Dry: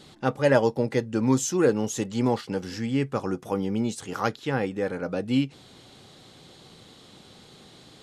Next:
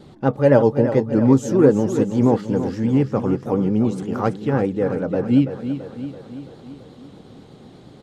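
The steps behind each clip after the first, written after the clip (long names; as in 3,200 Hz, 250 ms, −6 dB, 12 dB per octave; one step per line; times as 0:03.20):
tilt shelving filter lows +8.5 dB, about 1,400 Hz
pitch vibrato 8.4 Hz 67 cents
repeating echo 334 ms, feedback 58%, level −10 dB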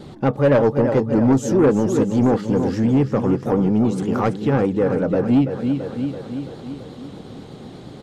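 in parallel at +1 dB: downward compressor, threshold −24 dBFS, peak gain reduction 15 dB
on the sum: soft clipping −9 dBFS, distortion −14 dB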